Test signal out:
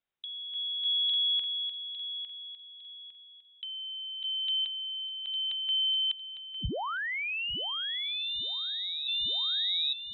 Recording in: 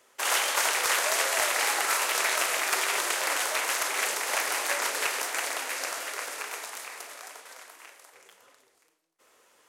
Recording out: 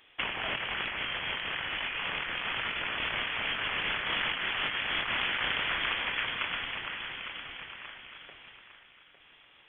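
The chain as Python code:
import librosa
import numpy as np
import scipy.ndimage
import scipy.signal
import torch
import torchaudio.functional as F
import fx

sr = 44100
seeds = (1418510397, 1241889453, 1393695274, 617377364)

y = fx.echo_feedback(x, sr, ms=855, feedback_pct=32, wet_db=-10.0)
y = fx.freq_invert(y, sr, carrier_hz=3800)
y = fx.over_compress(y, sr, threshold_db=-33.0, ratio=-1.0)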